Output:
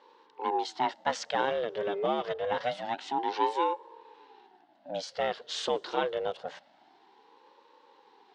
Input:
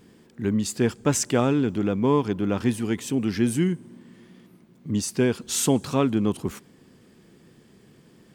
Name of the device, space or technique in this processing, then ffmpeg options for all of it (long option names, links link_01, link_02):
voice changer toy: -filter_complex "[0:a]asettb=1/sr,asplit=3[link_01][link_02][link_03];[link_01]atrim=end=1.724[link_04];[link_02]atrim=start=1.72:end=2.81,asetpts=PTS-STARTPTS,afade=type=in:duration=0.004:curve=qsin,afade=type=out:start_time=1.086:duration=0.004:curve=qsin,aecho=1:1:5.3:0.72,atrim=end_sample=48069[link_05];[link_03]atrim=start=2.806[link_06];[link_04][link_05]acrossfade=duration=0.004:curve1=hsin:curve2=qsin[link_07];[link_07][link_06]acrossfade=duration=0.004:curve1=qsin:curve2=hsin,highpass=frequency=160:poles=1,aeval=exprs='val(0)*sin(2*PI*450*n/s+450*0.55/0.26*sin(2*PI*0.26*n/s))':channel_layout=same,highpass=550,equalizer=frequency=660:width_type=q:width=4:gain=-7,equalizer=frequency=1200:width_type=q:width=4:gain=-8,equalizer=frequency=2400:width_type=q:width=4:gain=-10,lowpass=frequency=4100:width=0.5412,lowpass=frequency=4100:width=1.3066,volume=4dB"